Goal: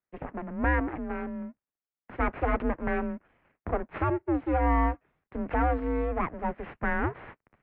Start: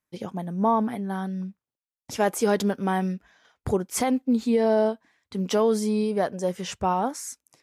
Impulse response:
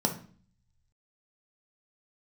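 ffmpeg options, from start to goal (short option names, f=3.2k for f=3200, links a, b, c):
-af "aeval=exprs='abs(val(0))':c=same,highpass=f=200:t=q:w=0.5412,highpass=f=200:t=q:w=1.307,lowpass=f=2.4k:t=q:w=0.5176,lowpass=f=2.4k:t=q:w=0.7071,lowpass=f=2.4k:t=q:w=1.932,afreqshift=-160,lowshelf=f=380:g=3"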